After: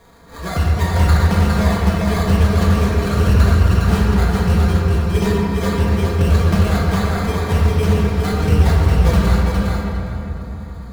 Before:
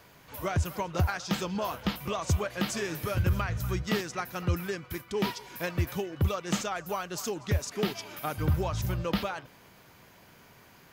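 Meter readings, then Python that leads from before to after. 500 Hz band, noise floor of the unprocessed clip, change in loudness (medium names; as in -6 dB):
+12.0 dB, -56 dBFS, +15.0 dB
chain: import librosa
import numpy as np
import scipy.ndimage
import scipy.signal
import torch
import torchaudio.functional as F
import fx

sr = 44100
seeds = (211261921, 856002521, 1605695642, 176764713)

y = fx.peak_eq(x, sr, hz=73.0, db=11.5, octaves=1.4)
y = y + 0.59 * np.pad(y, (int(4.3 * sr / 1000.0), 0))[:len(y)]
y = fx.sample_hold(y, sr, seeds[0], rate_hz=2800.0, jitter_pct=0)
y = fx.echo_feedback(y, sr, ms=408, feedback_pct=15, wet_db=-4.0)
y = fx.room_shoebox(y, sr, seeds[1], volume_m3=170.0, walls='hard', distance_m=0.76)
y = fx.doppler_dist(y, sr, depth_ms=0.17)
y = y * 10.0 ** (2.5 / 20.0)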